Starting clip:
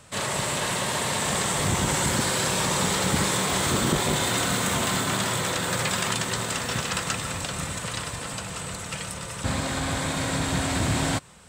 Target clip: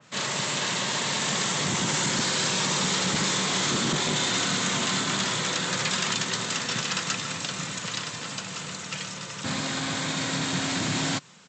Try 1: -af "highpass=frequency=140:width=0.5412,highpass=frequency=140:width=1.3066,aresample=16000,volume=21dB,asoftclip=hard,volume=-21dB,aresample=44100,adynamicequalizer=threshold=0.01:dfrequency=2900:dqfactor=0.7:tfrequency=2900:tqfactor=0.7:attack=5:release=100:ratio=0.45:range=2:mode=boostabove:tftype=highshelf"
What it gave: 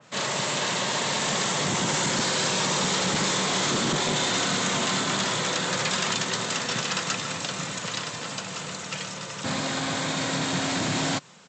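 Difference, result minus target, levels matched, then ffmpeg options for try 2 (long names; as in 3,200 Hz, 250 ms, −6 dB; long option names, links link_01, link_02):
500 Hz band +3.5 dB
-af "highpass=frequency=140:width=0.5412,highpass=frequency=140:width=1.3066,equalizer=frequency=620:width=0.91:gain=-5,aresample=16000,volume=21dB,asoftclip=hard,volume=-21dB,aresample=44100,adynamicequalizer=threshold=0.01:dfrequency=2900:dqfactor=0.7:tfrequency=2900:tqfactor=0.7:attack=5:release=100:ratio=0.45:range=2:mode=boostabove:tftype=highshelf"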